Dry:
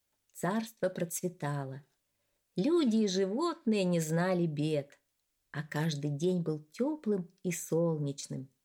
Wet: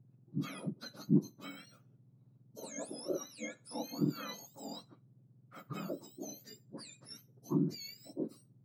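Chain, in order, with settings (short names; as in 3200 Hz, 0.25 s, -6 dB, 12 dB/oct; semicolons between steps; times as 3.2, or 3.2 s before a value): spectrum mirrored in octaves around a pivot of 1500 Hz; RIAA curve playback; gain -4.5 dB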